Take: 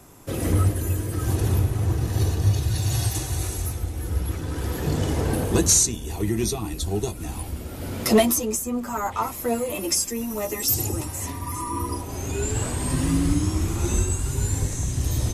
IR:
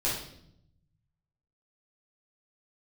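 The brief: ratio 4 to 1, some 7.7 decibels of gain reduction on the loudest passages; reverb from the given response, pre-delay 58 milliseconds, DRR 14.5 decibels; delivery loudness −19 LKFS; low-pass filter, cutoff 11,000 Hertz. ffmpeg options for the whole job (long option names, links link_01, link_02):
-filter_complex "[0:a]lowpass=11000,acompressor=threshold=-23dB:ratio=4,asplit=2[link_01][link_02];[1:a]atrim=start_sample=2205,adelay=58[link_03];[link_02][link_03]afir=irnorm=-1:irlink=0,volume=-22.5dB[link_04];[link_01][link_04]amix=inputs=2:normalize=0,volume=9dB"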